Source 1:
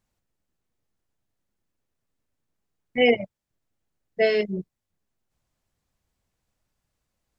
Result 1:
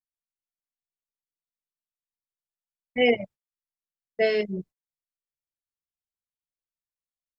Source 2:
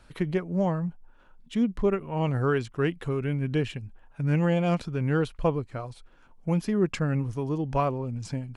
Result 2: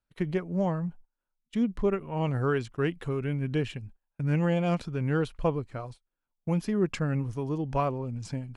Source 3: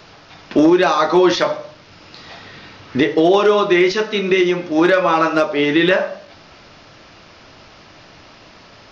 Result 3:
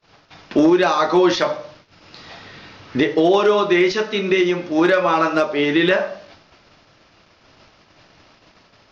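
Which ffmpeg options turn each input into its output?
-af "agate=range=-29dB:threshold=-42dB:ratio=16:detection=peak,volume=-2dB"

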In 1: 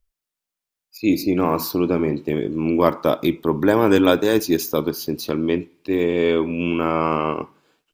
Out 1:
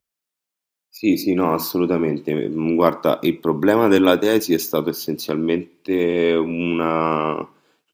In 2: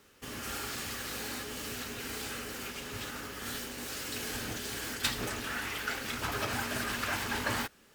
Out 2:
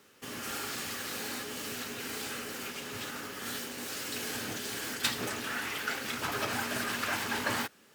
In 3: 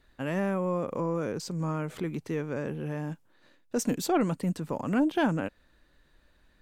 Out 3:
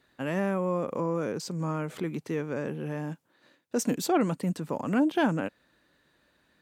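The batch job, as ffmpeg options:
-af "highpass=130,volume=1dB"

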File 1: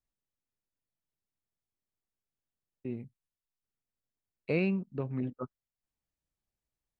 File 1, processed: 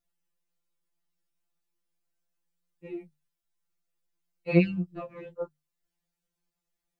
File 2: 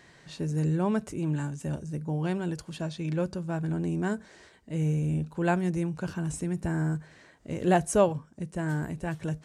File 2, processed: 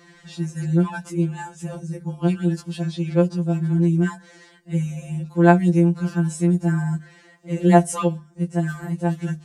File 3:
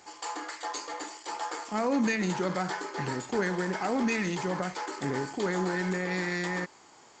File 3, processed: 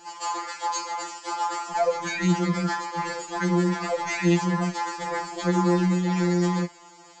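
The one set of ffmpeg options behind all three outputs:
-af "bandreject=f=50:t=h:w=6,bandreject=f=100:t=h:w=6,bandreject=f=150:t=h:w=6,afftfilt=real='re*2.83*eq(mod(b,8),0)':imag='im*2.83*eq(mod(b,8),0)':win_size=2048:overlap=0.75,volume=7dB"

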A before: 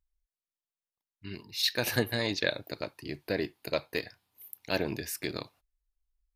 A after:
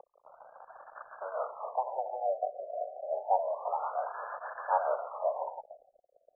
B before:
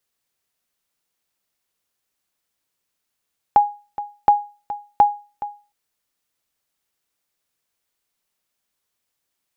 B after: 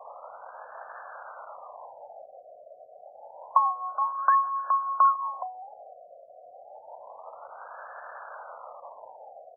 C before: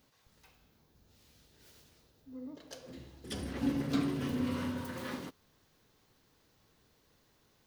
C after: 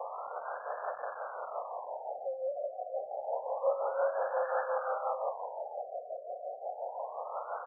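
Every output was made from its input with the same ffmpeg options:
-filter_complex "[0:a]aeval=exprs='val(0)+0.5*0.0596*sgn(val(0))':c=same,acrossover=split=1600[a][b];[a]aeval=exprs='val(0)*(1-0.7/2+0.7/2*cos(2*PI*5.7*n/s))':c=same[c];[b]aeval=exprs='val(0)*(1-0.7/2-0.7/2*cos(2*PI*5.7*n/s))':c=same[d];[c][d]amix=inputs=2:normalize=0,aecho=1:1:454|908:0.1|0.029,asplit=2[e][f];[f]acrusher=samples=23:mix=1:aa=0.000001:lfo=1:lforange=23:lforate=0.59,volume=-8dB[g];[e][g]amix=inputs=2:normalize=0,highpass=f=290:t=q:w=0.5412,highpass=f=290:t=q:w=1.307,lowpass=f=2.3k:t=q:w=0.5176,lowpass=f=2.3k:t=q:w=0.7071,lowpass=f=2.3k:t=q:w=1.932,afreqshift=270,anlmdn=0.158,afftfilt=real='re*lt(b*sr/1024,730*pow(1800/730,0.5+0.5*sin(2*PI*0.28*pts/sr)))':imag='im*lt(b*sr/1024,730*pow(1800/730,0.5+0.5*sin(2*PI*0.28*pts/sr)))':win_size=1024:overlap=0.75"

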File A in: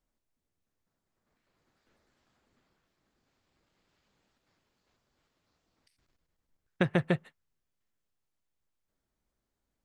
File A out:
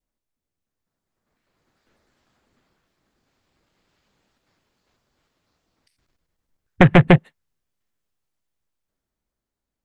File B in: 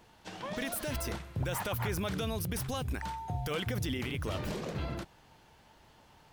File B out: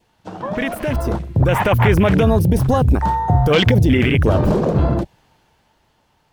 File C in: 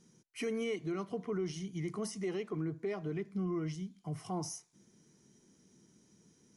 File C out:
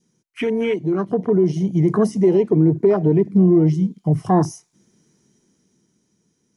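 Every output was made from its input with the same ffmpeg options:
-af "aeval=exprs='0.335*sin(PI/2*3.55*val(0)/0.335)':c=same,adynamicequalizer=threshold=0.00562:dfrequency=1300:dqfactor=3.2:tfrequency=1300:tqfactor=3.2:attack=5:release=100:ratio=0.375:range=3:mode=cutabove:tftype=bell,afwtdn=0.0398,dynaudnorm=f=150:g=17:m=7.5dB"

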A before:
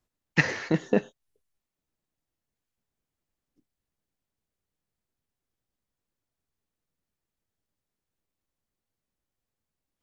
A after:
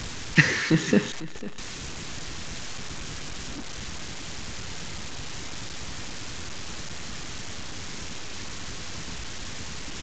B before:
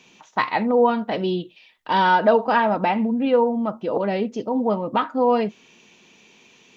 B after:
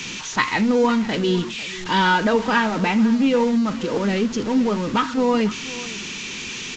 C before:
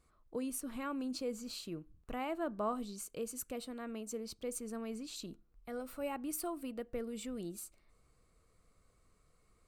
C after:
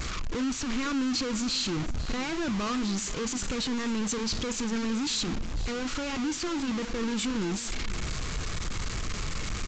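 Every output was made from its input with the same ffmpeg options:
-filter_complex "[0:a]aeval=exprs='val(0)+0.5*0.0316*sgn(val(0))':c=same,equalizer=f=680:t=o:w=1.1:g=-14.5,asplit=2[a][b];[b]acrusher=bits=5:mix=0:aa=0.000001,volume=-4dB[c];[a][c]amix=inputs=2:normalize=0,flanger=delay=0.1:depth=2.5:regen=-86:speed=2:shape=sinusoidal,asplit=2[d][e];[e]aecho=0:1:498:0.141[f];[d][f]amix=inputs=2:normalize=0,aresample=16000,aresample=44100,volume=5.5dB"

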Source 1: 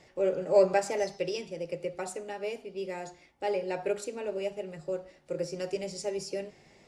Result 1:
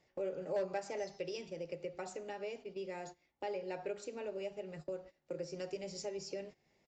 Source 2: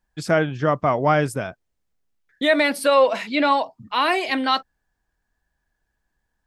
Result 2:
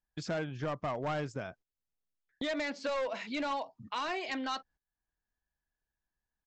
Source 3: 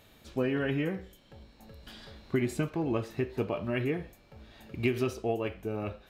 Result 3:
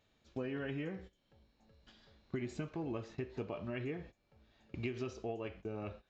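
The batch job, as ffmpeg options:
-af "agate=range=-17dB:threshold=-44dB:ratio=16:detection=peak,aresample=16000,asoftclip=type=hard:threshold=-15.5dB,aresample=44100,acompressor=threshold=-48dB:ratio=2,volume=1.5dB"

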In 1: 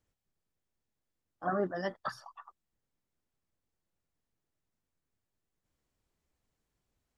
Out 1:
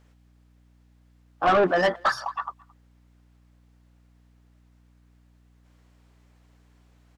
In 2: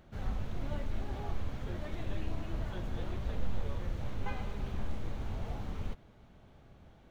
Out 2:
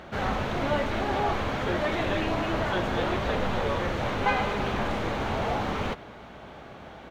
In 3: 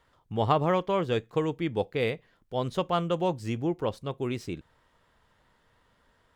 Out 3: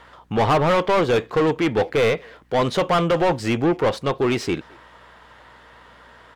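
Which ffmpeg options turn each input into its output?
-filter_complex "[0:a]asplit=2[a][b];[b]highpass=f=720:p=1,volume=29dB,asoftclip=type=tanh:threshold=-9.5dB[c];[a][c]amix=inputs=2:normalize=0,lowpass=f=2.3k:p=1,volume=-6dB,asplit=2[d][e];[e]adelay=220,highpass=300,lowpass=3.4k,asoftclip=type=hard:threshold=-19dB,volume=-25dB[f];[d][f]amix=inputs=2:normalize=0,aeval=exprs='val(0)+0.00141*(sin(2*PI*60*n/s)+sin(2*PI*2*60*n/s)/2+sin(2*PI*3*60*n/s)/3+sin(2*PI*4*60*n/s)/4+sin(2*PI*5*60*n/s)/5)':c=same"

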